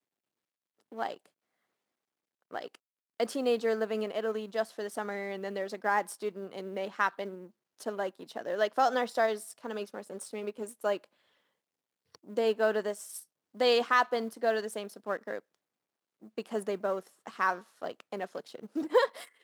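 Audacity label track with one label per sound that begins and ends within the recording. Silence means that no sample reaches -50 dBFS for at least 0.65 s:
0.920000	1.260000	sound
2.510000	11.040000	sound
12.150000	15.400000	sound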